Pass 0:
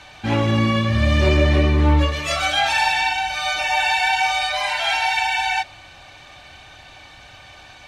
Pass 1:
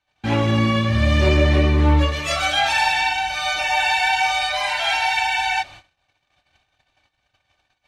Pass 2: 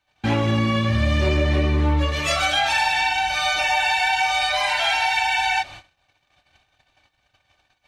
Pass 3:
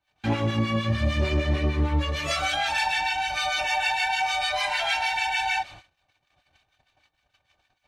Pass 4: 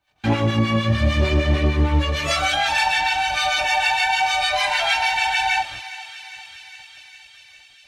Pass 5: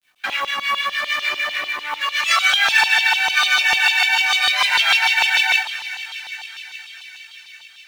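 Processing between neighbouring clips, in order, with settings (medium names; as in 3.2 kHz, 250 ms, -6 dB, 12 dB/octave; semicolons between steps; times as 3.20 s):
gate -39 dBFS, range -34 dB
compression 3:1, threshold -21 dBFS, peak gain reduction 7.5 dB; trim +3 dB
harmonic tremolo 6.6 Hz, depth 70%, crossover 1.1 kHz; trim -1.5 dB
thinning echo 405 ms, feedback 76%, high-pass 1.1 kHz, level -14 dB; trim +5.5 dB
LFO high-pass saw down 6.7 Hz 960–3600 Hz; companded quantiser 6-bit; trim +2 dB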